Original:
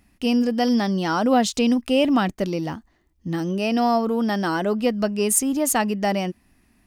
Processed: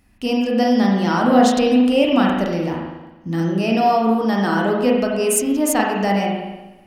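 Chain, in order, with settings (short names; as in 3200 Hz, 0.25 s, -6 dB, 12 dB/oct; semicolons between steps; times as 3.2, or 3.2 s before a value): spring tank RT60 1.1 s, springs 36/40 ms, chirp 65 ms, DRR -2 dB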